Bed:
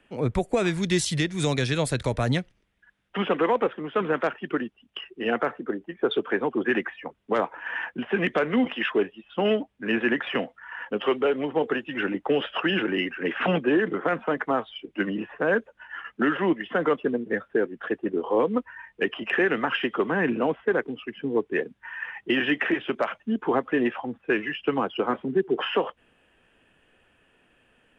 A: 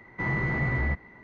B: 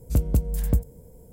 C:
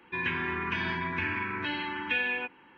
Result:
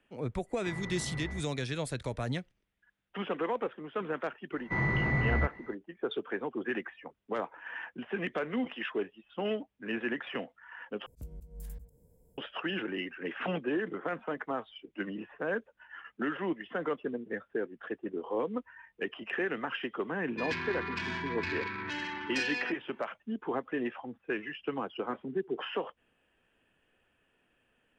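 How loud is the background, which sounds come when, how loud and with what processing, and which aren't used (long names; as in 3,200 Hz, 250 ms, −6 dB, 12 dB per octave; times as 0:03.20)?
bed −10 dB
0:00.46: mix in A −13.5 dB, fades 0.05 s
0:04.52: mix in A −1.5 dB
0:11.06: overwrite with B −16 dB + volume swells 183 ms
0:20.25: mix in C −4.5 dB + phase distortion by the signal itself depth 0.091 ms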